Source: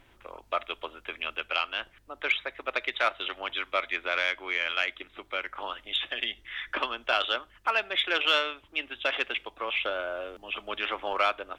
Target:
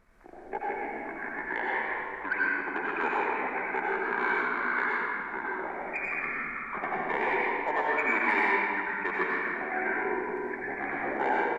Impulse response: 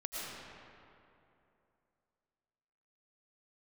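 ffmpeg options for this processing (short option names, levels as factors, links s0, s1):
-filter_complex "[0:a]asetrate=29433,aresample=44100,atempo=1.49831[s0];[1:a]atrim=start_sample=2205,asetrate=52920,aresample=44100[s1];[s0][s1]afir=irnorm=-1:irlink=0"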